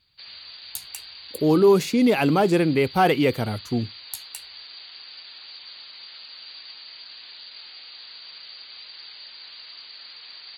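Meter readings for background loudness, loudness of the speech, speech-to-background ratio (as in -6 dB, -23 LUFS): -39.5 LUFS, -20.5 LUFS, 19.0 dB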